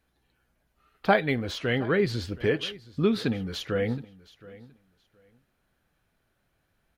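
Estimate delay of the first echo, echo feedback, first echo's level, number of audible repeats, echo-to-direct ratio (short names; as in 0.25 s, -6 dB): 0.72 s, 19%, -20.0 dB, 2, -20.0 dB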